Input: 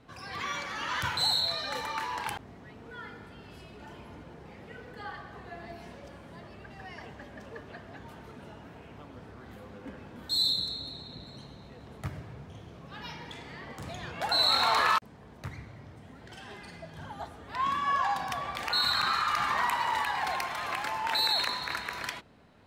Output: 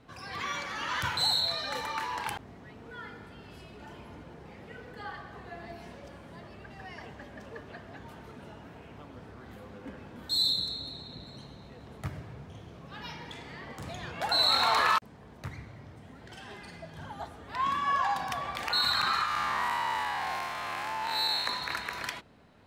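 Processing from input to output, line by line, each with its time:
0:19.25–0:21.46: spectrum smeared in time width 147 ms

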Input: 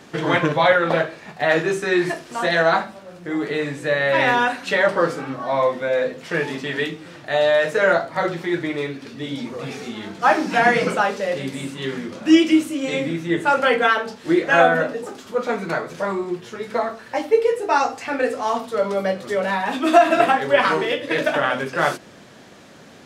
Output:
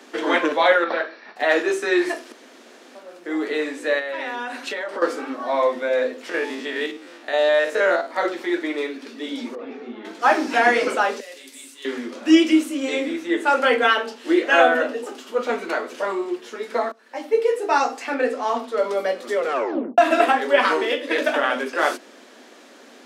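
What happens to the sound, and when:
0:00.84–0:01.36: Chebyshev low-pass with heavy ripple 5,800 Hz, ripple 6 dB
0:02.32–0:02.95: fill with room tone
0:03.99–0:05.02: downward compressor 10 to 1, threshold −24 dBFS
0:06.29–0:08.11: spectrum averaged block by block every 50 ms
0:09.55–0:10.05: head-to-tape spacing loss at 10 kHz 41 dB
0:11.20–0:11.85: first-order pre-emphasis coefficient 0.9
0:13.86–0:16.36: parametric band 2,900 Hz +7.5 dB 0.21 octaves
0:16.92–0:17.54: fade in, from −22.5 dB
0:18.14–0:18.78: high-shelf EQ 7,100 Hz −10 dB
0:19.37: tape stop 0.61 s
whole clip: Chebyshev high-pass filter 240 Hz, order 5

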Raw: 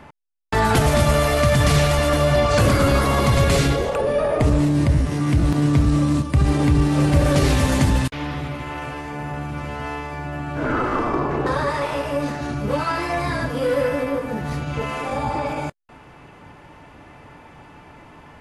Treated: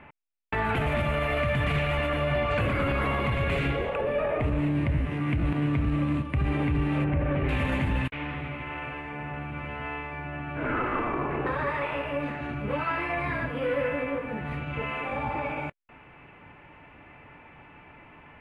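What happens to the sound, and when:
0:07.04–0:07.49: high-frequency loss of the air 500 metres
whole clip: high shelf with overshoot 3,700 Hz −14 dB, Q 3; brickwall limiter −10.5 dBFS; level −7.5 dB

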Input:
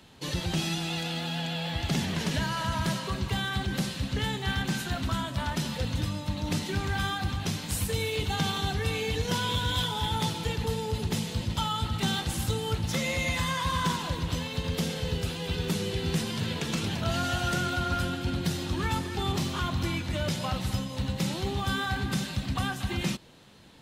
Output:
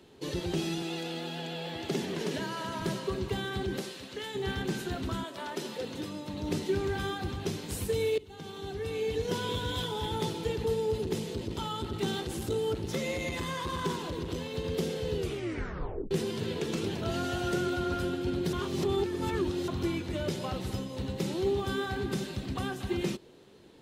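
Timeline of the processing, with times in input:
0:00.82–0:02.82: high-pass filter 170 Hz
0:03.78–0:04.34: high-pass filter 460 Hz → 1,200 Hz 6 dB per octave
0:05.23–0:06.32: high-pass filter 410 Hz → 160 Hz
0:08.18–0:09.46: fade in, from −22.5 dB
0:10.97–0:14.55: saturating transformer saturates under 200 Hz
0:15.18: tape stop 0.93 s
0:18.53–0:19.68: reverse
whole clip: parametric band 390 Hz +15 dB 0.81 octaves; level −6.5 dB

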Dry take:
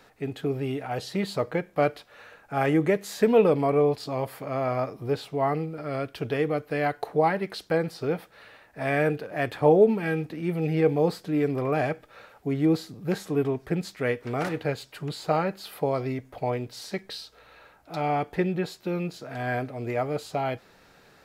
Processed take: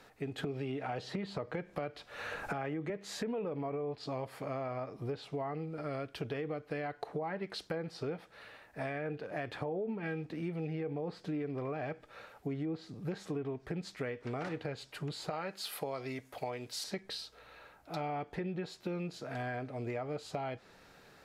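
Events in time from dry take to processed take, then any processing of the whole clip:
0:00.38–0:02.90: multiband upward and downward compressor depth 100%
0:15.30–0:16.84: spectral tilt +2.5 dB per octave
whole clip: treble cut that deepens with the level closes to 2,700 Hz, closed at −18.5 dBFS; brickwall limiter −17 dBFS; downward compressor 5 to 1, threshold −32 dBFS; level −3 dB

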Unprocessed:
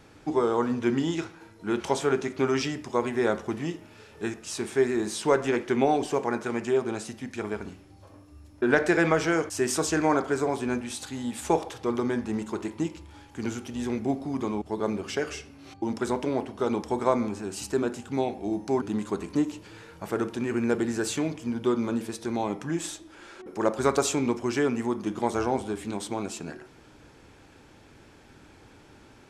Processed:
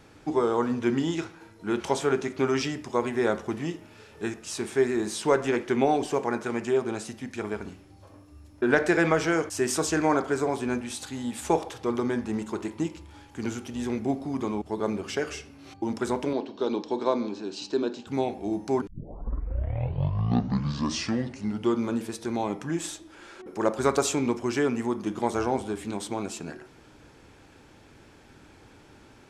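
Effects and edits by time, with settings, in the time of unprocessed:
0:16.33–0:18.07: loudspeaker in its box 240–5,600 Hz, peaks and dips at 300 Hz +4 dB, 740 Hz −5 dB, 1,300 Hz −7 dB, 2,000 Hz −9 dB, 4,000 Hz +9 dB
0:18.87: tape start 2.94 s

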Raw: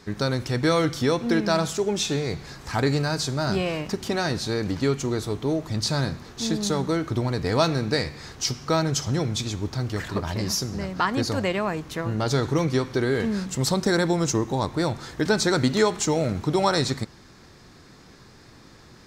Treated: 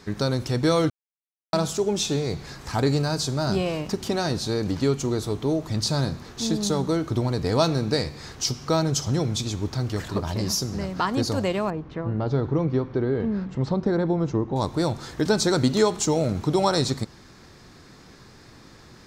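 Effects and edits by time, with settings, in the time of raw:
0:00.90–0:01.53: silence
0:11.70–0:14.56: head-to-tape spacing loss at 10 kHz 39 dB
whole clip: dynamic equaliser 1,900 Hz, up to −7 dB, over −43 dBFS, Q 1.3; level +1 dB

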